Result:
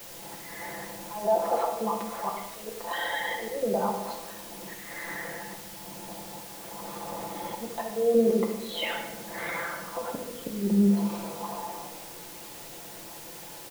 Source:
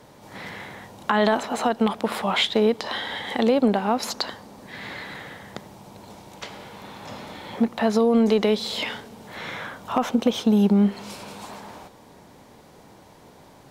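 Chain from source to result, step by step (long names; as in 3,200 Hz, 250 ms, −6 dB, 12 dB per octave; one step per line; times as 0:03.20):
spectral envelope exaggerated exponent 2
high-pass filter 440 Hz 6 dB per octave
treble cut that deepens with the level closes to 690 Hz, closed at −18.5 dBFS
low-pass filter 1,700 Hz 6 dB per octave
comb filter 5.9 ms, depth 83%
volume swells 355 ms
background noise white −46 dBFS
on a send: convolution reverb RT60 0.95 s, pre-delay 6 ms, DRR 2 dB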